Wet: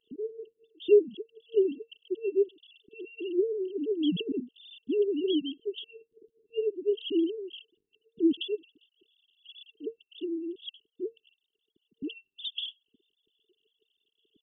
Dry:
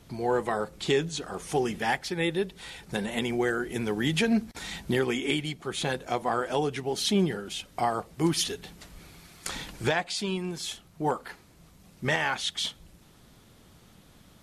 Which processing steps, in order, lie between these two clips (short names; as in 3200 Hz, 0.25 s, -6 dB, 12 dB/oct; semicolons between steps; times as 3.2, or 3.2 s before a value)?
sine-wave speech; FFT band-reject 460–2700 Hz